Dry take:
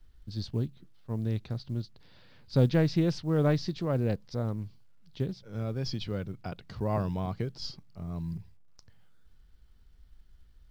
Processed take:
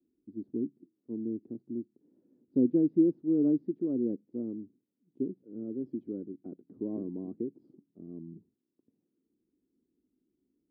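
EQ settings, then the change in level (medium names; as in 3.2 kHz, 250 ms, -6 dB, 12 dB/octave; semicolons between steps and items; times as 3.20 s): Butterworth band-pass 300 Hz, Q 2.1; peaking EQ 300 Hz +3.5 dB 0.77 oct; +3.5 dB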